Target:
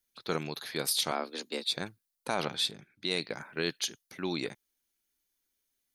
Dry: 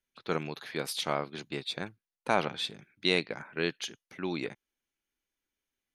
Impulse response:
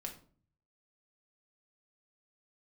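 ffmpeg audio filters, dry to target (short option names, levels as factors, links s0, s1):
-filter_complex "[0:a]aexciter=amount=2:drive=7.3:freq=3800,alimiter=limit=0.133:level=0:latency=1:release=26,asettb=1/sr,asplit=3[s0][s1][s2];[s0]atrim=end=1.114[s3];[s1]atrim=start=1.11:end=1.64,asetpts=PTS-STARTPTS,afade=t=in:d=0.004:c=qsin,afade=t=out:st=0.526:d=0.004:c=qsin,afreqshift=88[s4];[s2]atrim=start=1.636[s5];[s3][s4]acrossfade=d=0.004:c1=hsin:c2=qsin[s6];[s6][s5]acrossfade=d=0.004:c1=qsin:c2=hsin,asettb=1/sr,asplit=3[s7][s8][s9];[s7]atrim=end=2.714[s10];[s8]atrim=start=2.71:end=3.11,asetpts=PTS-STARTPTS,afade=t=in:d=0.004:c=qsin,afade=t=out:st=0.396:d=0.004:c=qsin,aemphasis=mode=reproduction:type=cd[s11];[s9]atrim=start=3.106[s12];[s10][s11]acrossfade=d=0.004:c1=hsin:c2=qsin[s13];[s13][s12]acrossfade=d=0.004:c1=qsin:c2=hsin"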